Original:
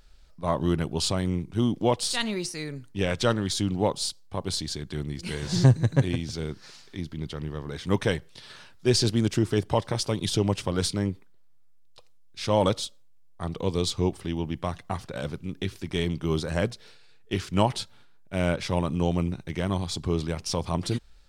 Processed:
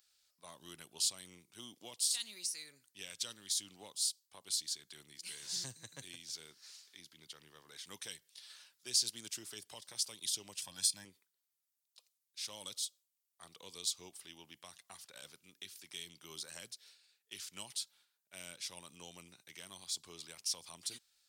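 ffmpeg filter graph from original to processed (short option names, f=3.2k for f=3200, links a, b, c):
-filter_complex "[0:a]asettb=1/sr,asplit=3[a][b][c];[a]atrim=end=10.624[d];[b]atrim=start=10.62:end=11.05,asetpts=PTS-STARTPTS,afade=t=in:d=0.004:c=qsin,afade=t=out:st=0.426:d=0.004:c=qsin,aecho=1:1:1.2:0.87,atrim=end_sample=18963,acompressor=mode=upward:threshold=-30dB:ratio=2.5:attack=3.2:release=140:knee=2.83:detection=peak[e];[c]atrim=start=11.046[f];[d][e]acrossfade=d=0.004:c1=hsin:c2=qsin[g];[g][f]acrossfade=d=0.004:c1=qsin:c2=hsin,aderivative,acrossover=split=300|3000[h][i][j];[i]acompressor=threshold=-51dB:ratio=6[k];[h][k][j]amix=inputs=3:normalize=0,volume=-2dB"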